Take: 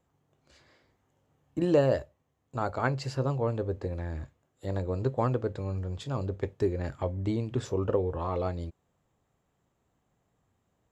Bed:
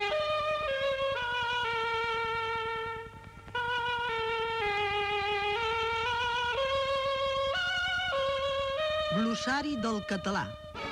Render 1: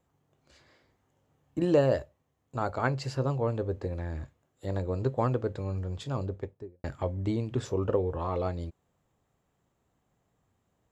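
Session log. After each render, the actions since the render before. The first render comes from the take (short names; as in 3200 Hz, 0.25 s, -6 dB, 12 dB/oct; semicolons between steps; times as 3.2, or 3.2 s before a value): 6.11–6.84 studio fade out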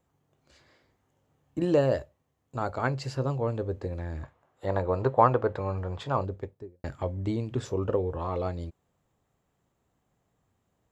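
4.23–6.25 EQ curve 280 Hz 0 dB, 960 Hz +13 dB, 7100 Hz -5 dB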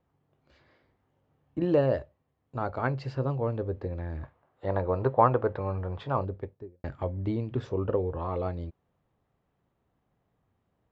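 air absorption 220 m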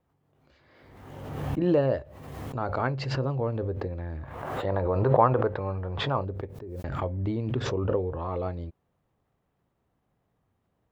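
backwards sustainer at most 38 dB/s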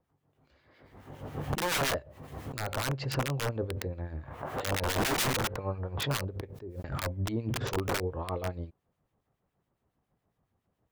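wrapped overs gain 21 dB; harmonic tremolo 7.2 Hz, depth 70%, crossover 1600 Hz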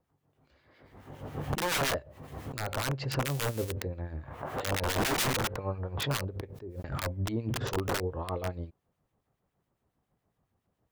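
3.25–3.72 switching spikes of -26.5 dBFS; 7.53–8.36 notch 2300 Hz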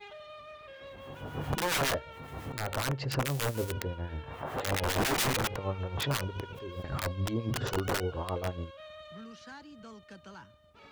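add bed -17.5 dB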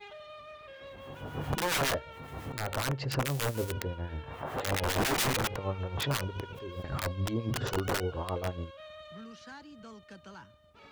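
nothing audible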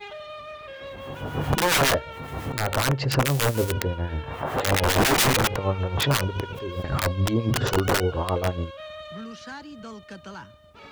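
gain +9 dB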